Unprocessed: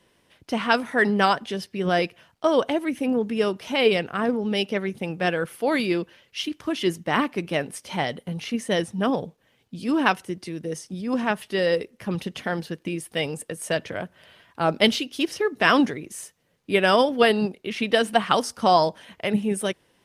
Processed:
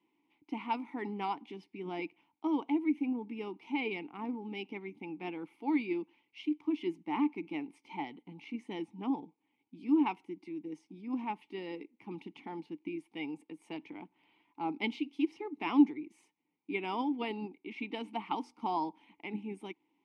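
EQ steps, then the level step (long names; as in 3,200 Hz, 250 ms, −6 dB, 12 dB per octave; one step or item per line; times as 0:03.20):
formant filter u
low-shelf EQ 130 Hz −6.5 dB
0.0 dB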